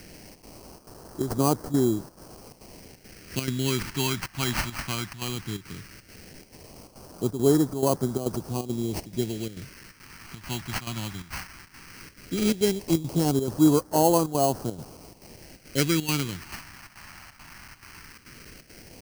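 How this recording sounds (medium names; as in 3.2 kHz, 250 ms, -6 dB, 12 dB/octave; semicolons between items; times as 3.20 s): a quantiser's noise floor 8-bit, dither triangular; chopped level 2.3 Hz, depth 65%, duty 80%; aliases and images of a low sample rate 3.6 kHz, jitter 0%; phasing stages 2, 0.16 Hz, lowest notch 450–2300 Hz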